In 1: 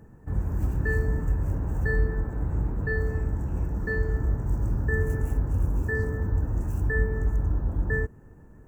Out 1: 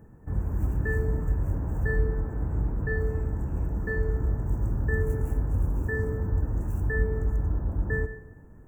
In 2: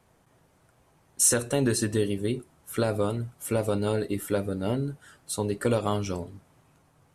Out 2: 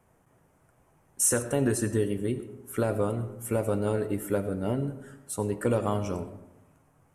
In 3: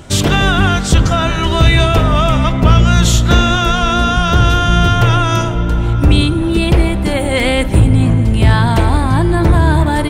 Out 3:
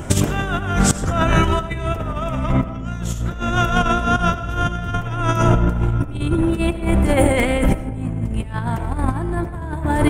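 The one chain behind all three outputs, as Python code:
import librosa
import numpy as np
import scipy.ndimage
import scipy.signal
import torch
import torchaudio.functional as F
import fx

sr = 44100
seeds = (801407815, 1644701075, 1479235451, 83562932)

y = fx.peak_eq(x, sr, hz=4100.0, db=-12.5, octaves=0.9)
y = fx.over_compress(y, sr, threshold_db=-17.0, ratio=-0.5)
y = fx.rev_freeverb(y, sr, rt60_s=0.95, hf_ratio=0.45, predelay_ms=50, drr_db=12.0)
y = F.gain(torch.from_numpy(y), -1.0).numpy()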